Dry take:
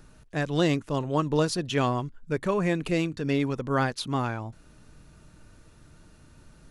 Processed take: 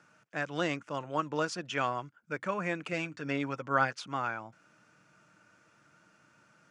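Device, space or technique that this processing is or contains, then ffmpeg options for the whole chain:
television speaker: -filter_complex "[0:a]highpass=frequency=160:width=0.5412,highpass=frequency=160:width=1.3066,equalizer=frequency=160:width_type=q:width=4:gain=-6,equalizer=frequency=250:width_type=q:width=4:gain=-10,equalizer=frequency=400:width_type=q:width=4:gain=-9,equalizer=frequency=1400:width_type=q:width=4:gain=8,equalizer=frequency=2300:width_type=q:width=4:gain=4,equalizer=frequency=4000:width_type=q:width=4:gain=-9,lowpass=frequency=7400:width=0.5412,lowpass=frequency=7400:width=1.3066,asettb=1/sr,asplit=3[link_01][link_02][link_03];[link_01]atrim=end=2.924[link_04];[link_02]atrim=start=2.92:end=3.98,asetpts=PTS-STARTPTS,afade=type=in:duration=0.004:curve=qsin,afade=type=out:start_time=1.056:duration=0.004:curve=qsin,aecho=1:1:7.3:0.51,atrim=end_sample=46746[link_05];[link_03]atrim=start=3.976[link_06];[link_04][link_05]acrossfade=duration=0.004:curve1=hsin:curve2=qsin[link_07];[link_07][link_06]acrossfade=duration=0.004:curve1=qsin:curve2=hsin,volume=-4.5dB"

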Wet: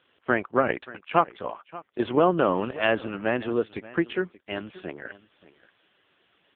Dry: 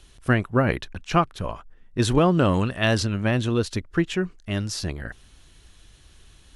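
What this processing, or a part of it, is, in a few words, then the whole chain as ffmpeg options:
satellite phone: -af "highpass=340,lowpass=3100,aecho=1:1:580:0.112,volume=2dB" -ar 8000 -c:a libopencore_amrnb -b:a 5150

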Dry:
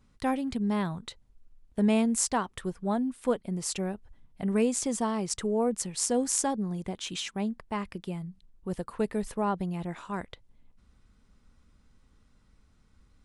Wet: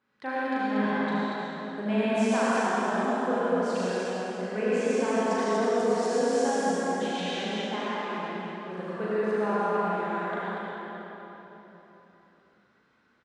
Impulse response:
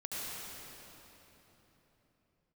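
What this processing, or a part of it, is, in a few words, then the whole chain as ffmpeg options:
station announcement: -filter_complex "[0:a]highpass=340,lowpass=3500,equalizer=frequency=1600:width_type=o:width=0.34:gain=8.5,aecho=1:1:37.9|236.2:0.708|0.708[link_01];[1:a]atrim=start_sample=2205[link_02];[link_01][link_02]afir=irnorm=-1:irlink=0"

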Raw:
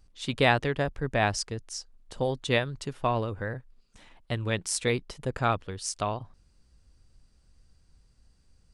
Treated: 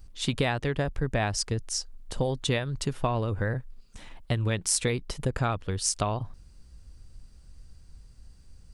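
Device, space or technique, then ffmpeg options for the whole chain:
ASMR close-microphone chain: -af "lowshelf=frequency=150:gain=7,acompressor=threshold=-28dB:ratio=8,highshelf=frequency=9900:gain=7,volume=5dB"

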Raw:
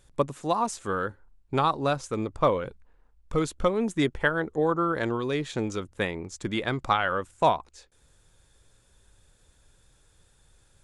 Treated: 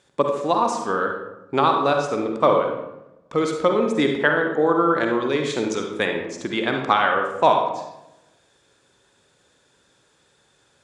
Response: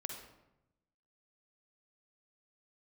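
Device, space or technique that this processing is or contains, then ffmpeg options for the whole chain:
supermarket ceiling speaker: -filter_complex "[0:a]highpass=220,lowpass=6300[link_01];[1:a]atrim=start_sample=2205[link_02];[link_01][link_02]afir=irnorm=-1:irlink=0,asettb=1/sr,asplit=3[link_03][link_04][link_05];[link_03]atrim=end=5.434[link_06];[link_04]atrim=start=5.43:end=6.06,asetpts=PTS-STARTPTS,afade=type=in:duration=0.004:curve=qsin,afade=type=out:start_time=0.626:duration=0.004:curve=qsin,highshelf=frequency=5900:gain=11[link_07];[link_05]atrim=start=6.056[link_08];[link_06][link_07]acrossfade=duration=0.004:curve1=hsin:curve2=qsin[link_09];[link_09][link_08]acrossfade=duration=0.004:curve1=qsin:curve2=hsin,volume=8dB"

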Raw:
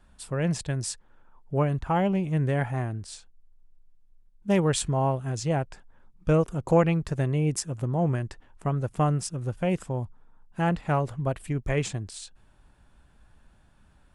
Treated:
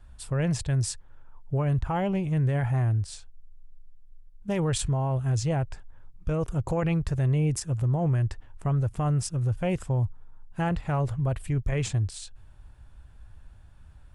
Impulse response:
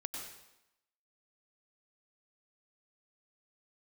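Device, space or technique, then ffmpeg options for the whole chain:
car stereo with a boomy subwoofer: -af "lowshelf=frequency=140:width_type=q:width=1.5:gain=9,alimiter=limit=-19.5dB:level=0:latency=1:release=17"

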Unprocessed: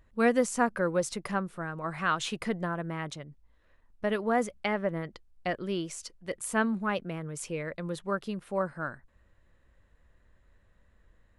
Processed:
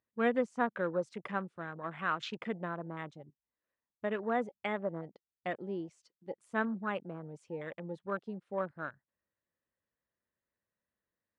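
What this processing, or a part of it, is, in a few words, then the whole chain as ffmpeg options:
over-cleaned archive recording: -filter_complex "[0:a]asettb=1/sr,asplit=3[link_01][link_02][link_03];[link_01]atrim=end=1.074[link_04];[link_02]atrim=start=1.07:end=1.54,asetpts=PTS-STARTPTS,afade=type=in:duration=0.004:curve=qsin,afade=type=out:start_time=0.466:duration=0.004:curve=qsin,highshelf=frequency=2100:gain=4[link_05];[link_03]atrim=start=1.536[link_06];[link_04][link_05]acrossfade=duration=0.004:curve1=hsin:curve2=qsin[link_07];[link_07][link_06]acrossfade=duration=0.004:curve1=qsin:curve2=hsin,highpass=170,lowpass=5800,afwtdn=0.0112,volume=-5dB"

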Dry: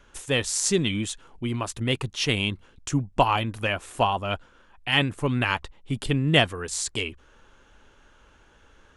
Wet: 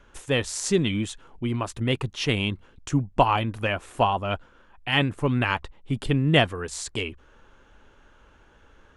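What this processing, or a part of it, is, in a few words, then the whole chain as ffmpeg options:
behind a face mask: -af "highshelf=frequency=3300:gain=-8,volume=1.5dB"

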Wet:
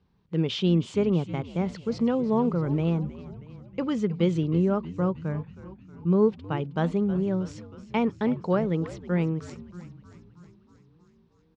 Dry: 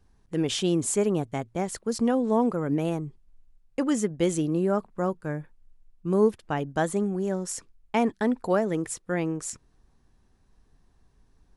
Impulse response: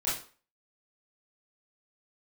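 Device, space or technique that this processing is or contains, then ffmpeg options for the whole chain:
frequency-shifting delay pedal into a guitar cabinet: -filter_complex "[0:a]asplit=8[link_01][link_02][link_03][link_04][link_05][link_06][link_07][link_08];[link_02]adelay=316,afreqshift=-91,volume=-15dB[link_09];[link_03]adelay=632,afreqshift=-182,volume=-18.9dB[link_10];[link_04]adelay=948,afreqshift=-273,volume=-22.8dB[link_11];[link_05]adelay=1264,afreqshift=-364,volume=-26.6dB[link_12];[link_06]adelay=1580,afreqshift=-455,volume=-30.5dB[link_13];[link_07]adelay=1896,afreqshift=-546,volume=-34.4dB[link_14];[link_08]adelay=2212,afreqshift=-637,volume=-38.3dB[link_15];[link_01][link_09][link_10][link_11][link_12][link_13][link_14][link_15]amix=inputs=8:normalize=0,highpass=87,equalizer=frequency=170:width_type=q:width=4:gain=8,equalizer=frequency=290:width_type=q:width=4:gain=-4,equalizer=frequency=710:width_type=q:width=4:gain=-7,equalizer=frequency=1700:width_type=q:width=4:gain=-7,lowpass=frequency=4300:width=0.5412,lowpass=frequency=4300:width=1.3066"

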